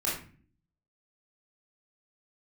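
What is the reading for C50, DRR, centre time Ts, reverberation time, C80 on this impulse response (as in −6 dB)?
3.5 dB, −7.0 dB, 42 ms, 0.40 s, 9.0 dB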